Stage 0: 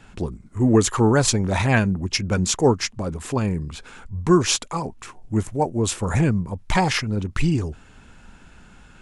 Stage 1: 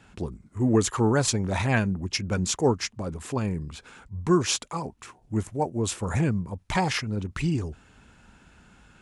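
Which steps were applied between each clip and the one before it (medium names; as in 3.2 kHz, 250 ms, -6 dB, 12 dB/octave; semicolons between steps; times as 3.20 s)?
high-pass 41 Hz; trim -5 dB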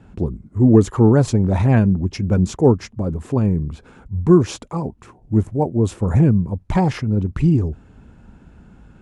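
tilt shelf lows +9.5 dB; trim +2 dB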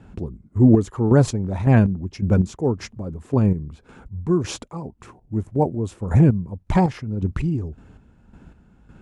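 square tremolo 1.8 Hz, depth 60%, duty 35%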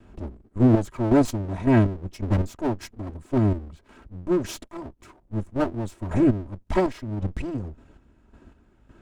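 comb filter that takes the minimum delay 3.1 ms; trim -3 dB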